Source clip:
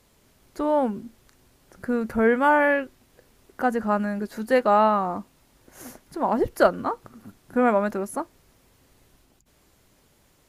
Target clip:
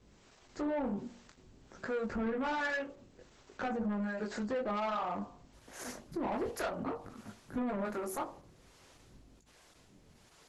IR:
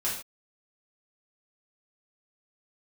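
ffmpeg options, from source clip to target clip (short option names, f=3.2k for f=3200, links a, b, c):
-filter_complex "[0:a]asplit=2[a][b];[1:a]atrim=start_sample=2205,atrim=end_sample=3969[c];[b][c]afir=irnorm=-1:irlink=0,volume=-22dB[d];[a][d]amix=inputs=2:normalize=0,flanger=delay=18.5:depth=6.8:speed=0.54,acrossover=split=450[e][f];[e]aeval=exprs='val(0)*(1-0.7/2+0.7/2*cos(2*PI*1.3*n/s))':c=same[g];[f]aeval=exprs='val(0)*(1-0.7/2-0.7/2*cos(2*PI*1.3*n/s))':c=same[h];[g][h]amix=inputs=2:normalize=0,acompressor=threshold=-36dB:ratio=2.5,equalizer=f=10k:w=1.8:g=-4,bandreject=f=47.37:t=h:w=4,bandreject=f=94.74:t=h:w=4,bandreject=f=142.11:t=h:w=4,bandreject=f=189.48:t=h:w=4,bandreject=f=236.85:t=h:w=4,bandreject=f=284.22:t=h:w=4,bandreject=f=331.59:t=h:w=4,bandreject=f=378.96:t=h:w=4,bandreject=f=426.33:t=h:w=4,bandreject=f=473.7:t=h:w=4,bandreject=f=521.07:t=h:w=4,bandreject=f=568.44:t=h:w=4,bandreject=f=615.81:t=h:w=4,bandreject=f=663.18:t=h:w=4,bandreject=f=710.55:t=h:w=4,bandreject=f=757.92:t=h:w=4,bandreject=f=805.29:t=h:w=4,bandreject=f=852.66:t=h:w=4,bandreject=f=900.03:t=h:w=4,bandreject=f=947.4:t=h:w=4,bandreject=f=994.77:t=h:w=4,bandreject=f=1.04214k:t=h:w=4,bandreject=f=1.08951k:t=h:w=4,bandreject=f=1.13688k:t=h:w=4,bandreject=f=1.18425k:t=h:w=4,asoftclip=type=tanh:threshold=-36dB,volume=6.5dB" -ar 48000 -c:a libopus -b:a 12k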